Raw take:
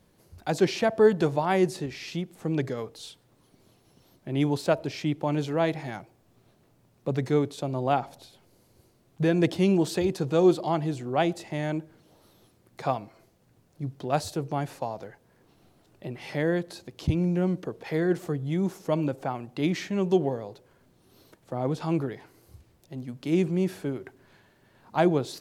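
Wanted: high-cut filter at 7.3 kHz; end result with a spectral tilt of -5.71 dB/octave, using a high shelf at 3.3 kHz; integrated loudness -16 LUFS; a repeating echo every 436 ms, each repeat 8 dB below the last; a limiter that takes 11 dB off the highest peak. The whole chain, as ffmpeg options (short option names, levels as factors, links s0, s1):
-af "lowpass=7300,highshelf=f=3300:g=5.5,alimiter=limit=0.112:level=0:latency=1,aecho=1:1:436|872|1308|1744|2180:0.398|0.159|0.0637|0.0255|0.0102,volume=5.62"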